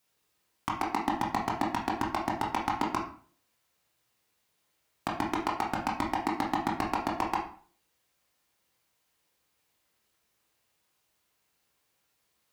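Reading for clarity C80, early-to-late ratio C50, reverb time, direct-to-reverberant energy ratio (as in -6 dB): 10.0 dB, 5.5 dB, 0.45 s, -2.5 dB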